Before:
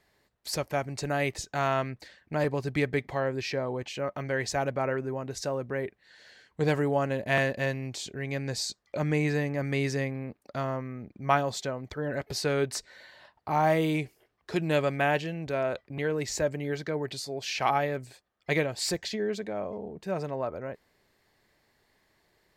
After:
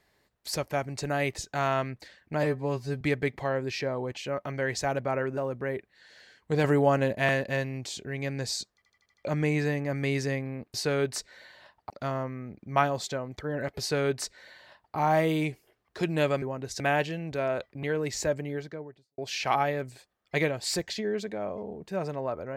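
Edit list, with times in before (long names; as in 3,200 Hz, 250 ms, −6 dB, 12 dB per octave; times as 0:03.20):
0:02.43–0:02.72: time-stretch 2×
0:05.08–0:05.46: move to 0:14.95
0:06.73–0:07.22: clip gain +4 dB
0:08.83: stutter 0.08 s, 6 plays
0:12.33–0:13.49: duplicate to 0:10.43
0:16.43–0:17.33: fade out and dull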